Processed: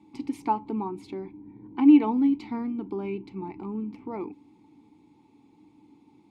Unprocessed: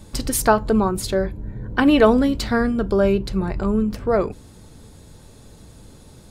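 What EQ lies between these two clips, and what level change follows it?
vowel filter u; HPF 80 Hz; +2.0 dB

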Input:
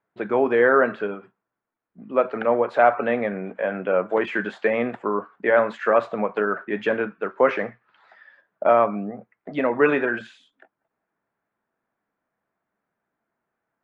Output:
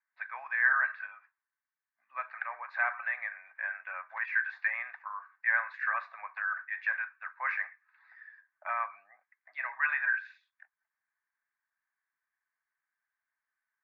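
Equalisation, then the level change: ladder high-pass 1400 Hz, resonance 80%; air absorption 190 m; fixed phaser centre 2100 Hz, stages 8; +6.0 dB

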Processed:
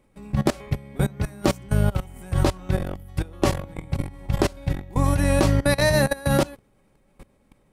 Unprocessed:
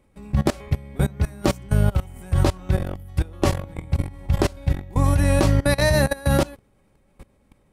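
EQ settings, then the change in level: bell 72 Hz -9.5 dB 0.56 oct; 0.0 dB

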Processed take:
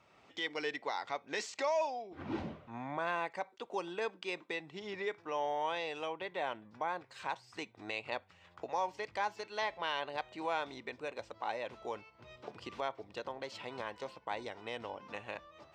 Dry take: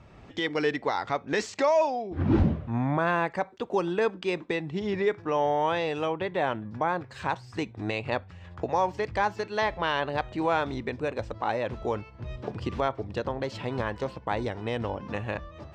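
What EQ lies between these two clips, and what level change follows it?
HPF 930 Hz 6 dB/oct; notch 1700 Hz, Q 12; dynamic EQ 1300 Hz, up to -6 dB, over -51 dBFS, Q 5.5; -5.0 dB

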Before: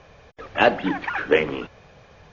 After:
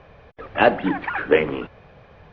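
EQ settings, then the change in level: air absorption 270 m; +2.5 dB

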